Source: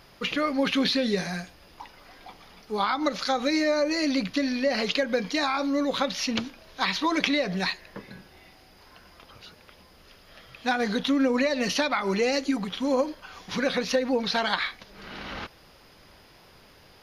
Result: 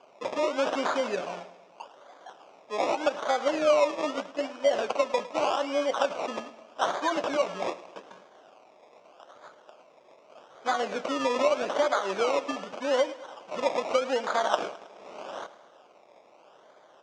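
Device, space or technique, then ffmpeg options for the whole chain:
circuit-bent sampling toy: -filter_complex "[0:a]acrusher=samples=23:mix=1:aa=0.000001:lfo=1:lforange=13.8:lforate=0.82,highpass=490,equalizer=f=610:t=q:w=4:g=7,equalizer=f=1.9k:t=q:w=4:g=-7,equalizer=f=4.2k:t=q:w=4:g=-9,lowpass=f=5.7k:w=0.5412,lowpass=f=5.7k:w=1.3066,asettb=1/sr,asplit=3[a][b][c];[a]atrim=end=3.914[d];[b]atrim=start=3.91:end=5.5,asetpts=PTS-STARTPTS,afade=t=in:d=0.004:c=qsin,afade=t=out:st=1.586:d=0.004:c=qsin,agate=range=-8dB:threshold=-30dB:ratio=16:detection=peak[e];[c]atrim=start=5.496[f];[d][e]acrossfade=d=0.004:c1=hsin:c2=qsin[g];[g][f]acrossfade=d=0.004:c1=qsin:c2=hsin,aecho=1:1:106|212|318|424|530:0.141|0.0777|0.0427|0.0235|0.0129"

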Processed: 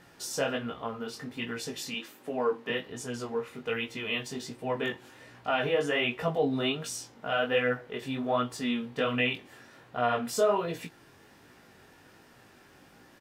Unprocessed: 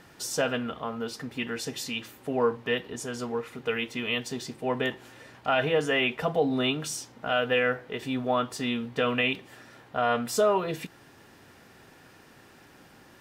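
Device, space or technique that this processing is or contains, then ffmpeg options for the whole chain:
double-tracked vocal: -filter_complex "[0:a]asettb=1/sr,asplit=3[a][b][c];[a]atrim=end=1.944[d];[b]atrim=start=1.94:end=2.7,asetpts=PTS-STARTPTS,afade=t=in:d=0.004:c=qsin,afade=t=out:st=0.756:d=0.004:c=qsin,highpass=f=170:w=0.5412,highpass=f=170:w=1.3066[e];[c]atrim=start=2.696[f];[d][e]acrossfade=d=0.004:c1=hsin:c2=qsin[g];[g][f]acrossfade=d=0.004:c1=qsin:c2=hsin,asplit=2[h][i];[i]adelay=24,volume=-12.5dB[j];[h][j]amix=inputs=2:normalize=0,flanger=delay=16.5:depth=5.7:speed=1.3"

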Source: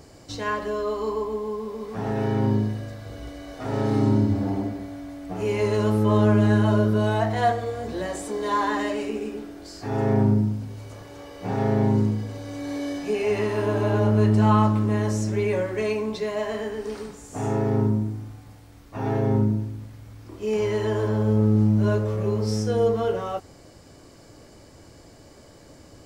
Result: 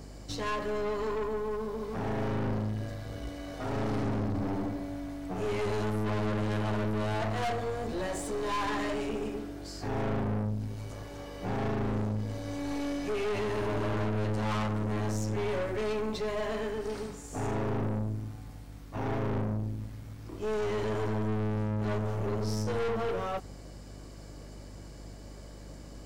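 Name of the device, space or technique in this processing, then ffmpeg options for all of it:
valve amplifier with mains hum: -af "aeval=exprs='(tanh(28.2*val(0)+0.45)-tanh(0.45))/28.2':c=same,aeval=exprs='val(0)+0.00501*(sin(2*PI*50*n/s)+sin(2*PI*2*50*n/s)/2+sin(2*PI*3*50*n/s)/3+sin(2*PI*4*50*n/s)/4+sin(2*PI*5*50*n/s)/5)':c=same"

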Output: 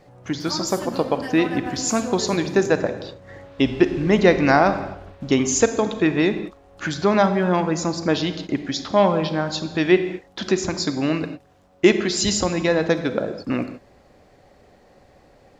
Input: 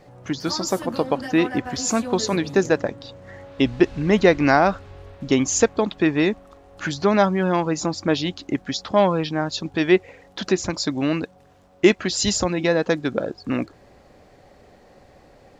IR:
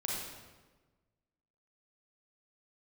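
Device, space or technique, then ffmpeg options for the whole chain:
keyed gated reverb: -filter_complex "[0:a]asplit=3[a][b][c];[1:a]atrim=start_sample=2205[d];[b][d]afir=irnorm=-1:irlink=0[e];[c]apad=whole_len=687868[f];[e][f]sidechaingate=range=-33dB:threshold=-39dB:ratio=16:detection=peak,volume=-9.5dB[g];[a][g]amix=inputs=2:normalize=0,volume=-2dB"

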